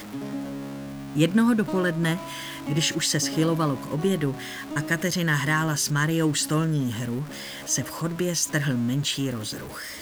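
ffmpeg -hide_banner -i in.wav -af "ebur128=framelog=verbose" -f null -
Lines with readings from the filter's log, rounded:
Integrated loudness:
  I:         -25.2 LUFS
  Threshold: -35.3 LUFS
Loudness range:
  LRA:         2.0 LU
  Threshold: -44.9 LUFS
  LRA low:   -26.1 LUFS
  LRA high:  -24.1 LUFS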